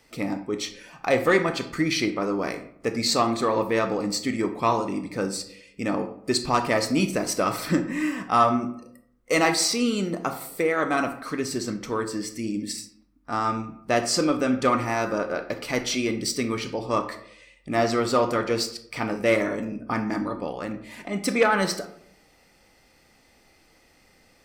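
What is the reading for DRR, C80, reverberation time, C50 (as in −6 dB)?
8.5 dB, 14.5 dB, 0.70 s, 11.5 dB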